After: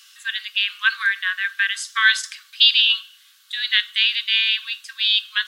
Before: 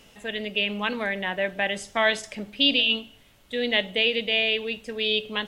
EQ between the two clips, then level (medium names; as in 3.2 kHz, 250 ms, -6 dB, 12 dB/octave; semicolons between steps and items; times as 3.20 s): treble shelf 5.2 kHz +10.5 dB; dynamic bell 1.5 kHz, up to +6 dB, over -39 dBFS, Q 1.9; rippled Chebyshev high-pass 1.1 kHz, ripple 9 dB; +8.0 dB